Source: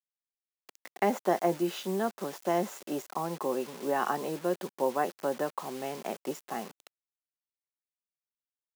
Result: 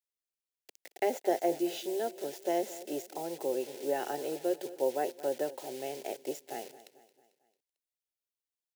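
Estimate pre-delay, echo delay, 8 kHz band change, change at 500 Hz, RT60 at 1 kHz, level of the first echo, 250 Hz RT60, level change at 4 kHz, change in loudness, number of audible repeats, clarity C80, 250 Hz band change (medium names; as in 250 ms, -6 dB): no reverb, 223 ms, 0.0 dB, -0.5 dB, no reverb, -17.0 dB, no reverb, -1.0 dB, -2.0 dB, 3, no reverb, -3.5 dB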